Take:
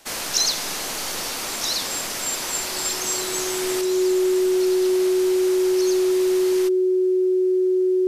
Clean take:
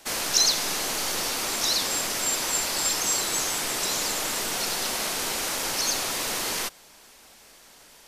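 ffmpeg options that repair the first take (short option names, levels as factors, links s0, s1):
-af "bandreject=f=370:w=30,asetnsamples=n=441:p=0,asendcmd='3.81 volume volume 6dB',volume=1"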